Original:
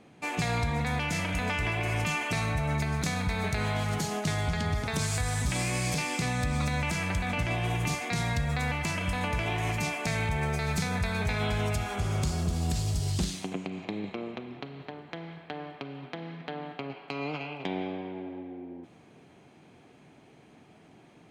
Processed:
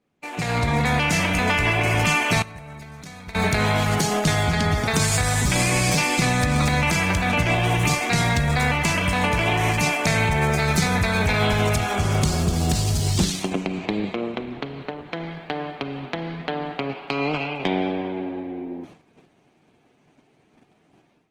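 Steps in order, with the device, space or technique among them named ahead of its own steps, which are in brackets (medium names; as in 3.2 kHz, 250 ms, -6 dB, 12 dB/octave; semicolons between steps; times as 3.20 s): 2.42–3.35 s: gate -24 dBFS, range -19 dB; video call (high-pass 100 Hz 6 dB/octave; level rider gain up to 12 dB; gate -41 dBFS, range -15 dB; trim -1.5 dB; Opus 16 kbps 48 kHz)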